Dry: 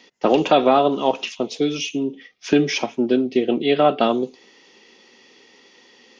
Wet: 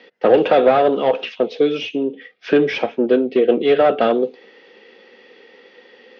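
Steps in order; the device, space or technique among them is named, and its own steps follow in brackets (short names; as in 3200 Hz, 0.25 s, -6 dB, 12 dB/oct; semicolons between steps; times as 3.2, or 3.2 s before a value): overdrive pedal into a guitar cabinet (overdrive pedal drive 17 dB, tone 1300 Hz, clips at -3 dBFS; speaker cabinet 88–4500 Hz, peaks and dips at 93 Hz +5 dB, 200 Hz +4 dB, 490 Hz +10 dB, 1000 Hz -7 dB, 1600 Hz +5 dB); gain -3 dB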